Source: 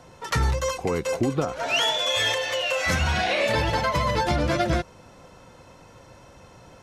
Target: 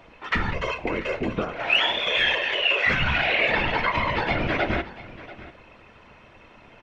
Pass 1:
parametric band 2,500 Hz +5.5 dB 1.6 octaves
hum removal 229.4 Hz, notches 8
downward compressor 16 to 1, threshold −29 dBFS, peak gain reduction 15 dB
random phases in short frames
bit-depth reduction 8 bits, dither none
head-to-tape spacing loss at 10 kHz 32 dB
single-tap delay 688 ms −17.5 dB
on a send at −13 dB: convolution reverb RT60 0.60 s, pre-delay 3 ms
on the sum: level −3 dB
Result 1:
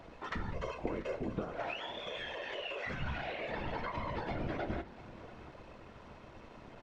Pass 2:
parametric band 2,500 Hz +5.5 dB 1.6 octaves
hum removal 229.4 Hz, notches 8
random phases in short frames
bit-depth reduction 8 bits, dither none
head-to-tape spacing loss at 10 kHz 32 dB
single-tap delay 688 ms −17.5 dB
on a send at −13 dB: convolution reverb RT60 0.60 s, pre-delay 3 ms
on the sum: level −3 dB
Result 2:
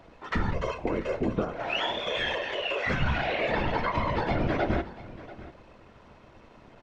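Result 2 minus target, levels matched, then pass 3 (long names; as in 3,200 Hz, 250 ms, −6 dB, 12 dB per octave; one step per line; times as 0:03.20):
2,000 Hz band −3.5 dB
parametric band 2,500 Hz +17.5 dB 1.6 octaves
hum removal 229.4 Hz, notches 8
random phases in short frames
bit-depth reduction 8 bits, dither none
head-to-tape spacing loss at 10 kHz 32 dB
single-tap delay 688 ms −17.5 dB
on a send at −13 dB: convolution reverb RT60 0.60 s, pre-delay 3 ms
on the sum: level −3 dB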